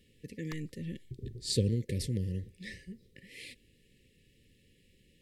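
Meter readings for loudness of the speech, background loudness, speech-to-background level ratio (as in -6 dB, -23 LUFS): -36.5 LUFS, -54.0 LUFS, 17.5 dB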